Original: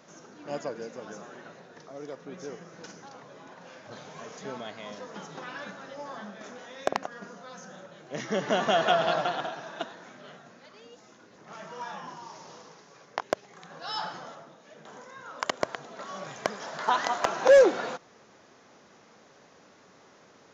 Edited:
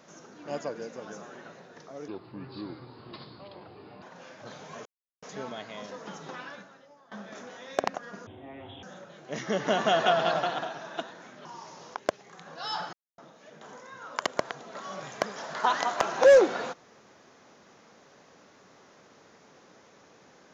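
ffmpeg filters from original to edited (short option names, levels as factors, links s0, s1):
-filter_complex "[0:a]asplit=11[s0][s1][s2][s3][s4][s5][s6][s7][s8][s9][s10];[s0]atrim=end=2.084[s11];[s1]atrim=start=2.08:end=3.48,asetpts=PTS-STARTPTS,asetrate=31752,aresample=44100[s12];[s2]atrim=start=3.476:end=4.31,asetpts=PTS-STARTPTS,afade=t=out:st=0.83:d=0.004:c=hsin,apad=pad_dur=0.37[s13];[s3]atrim=start=4.31:end=6.2,asetpts=PTS-STARTPTS,afade=t=in:d=0.004:c=hsin,afade=t=out:st=1.12:d=0.77:c=qua:silence=0.1[s14];[s4]atrim=start=6.2:end=7.354,asetpts=PTS-STARTPTS,afade=t=in:d=0.004:c=hsin:silence=0.1[s15];[s5]atrim=start=7.35:end=7.65,asetpts=PTS-STARTPTS,asetrate=23373,aresample=44100,atrim=end_sample=24962,asetpts=PTS-STARTPTS[s16];[s6]atrim=start=7.646:end=10.272[s17];[s7]atrim=start=12.128:end=12.632[s18];[s8]atrim=start=13.188:end=14.17,asetpts=PTS-STARTPTS,afade=t=out:st=0.978:d=0.004:c=hsin[s19];[s9]atrim=start=14.17:end=14.42,asetpts=PTS-STARTPTS,volume=0[s20];[s10]atrim=start=14.42,asetpts=PTS-STARTPTS,afade=t=in:d=0.004:c=hsin[s21];[s11][s12]acrossfade=d=0.004:c1=hsin:c2=hsin[s22];[s13][s14][s15]concat=n=3:v=0:a=1[s23];[s22][s23]acrossfade=d=0.004:c1=hsin:c2=hsin[s24];[s24][s16]acrossfade=d=0.004:c1=hsin:c2=hsin[s25];[s25][s17]acrossfade=d=0.004:c1=hsin:c2=hsin[s26];[s26][s18]acrossfade=d=0.004:c1=hsin:c2=hsin[s27];[s19][s20][s21]concat=n=3:v=0:a=1[s28];[s27][s28]acrossfade=d=0.004:c1=hsin:c2=hsin"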